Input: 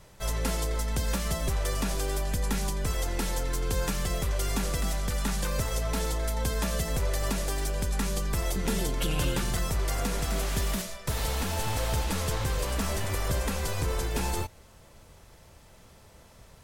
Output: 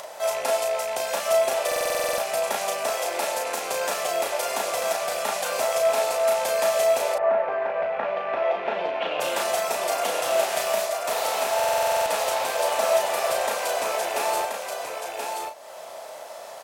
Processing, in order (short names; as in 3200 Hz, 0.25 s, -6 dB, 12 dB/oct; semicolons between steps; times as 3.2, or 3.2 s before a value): rattling part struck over -30 dBFS, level -29 dBFS; resonant high-pass 650 Hz, resonance Q 4.9; echo 1.03 s -4.5 dB; upward compressor, threshold -33 dBFS; 7.13–9.2 LPF 1800 Hz -> 3300 Hz 24 dB/oct; doubler 35 ms -4 dB; stuck buffer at 1.67/11.55, samples 2048, times 10; gain +2 dB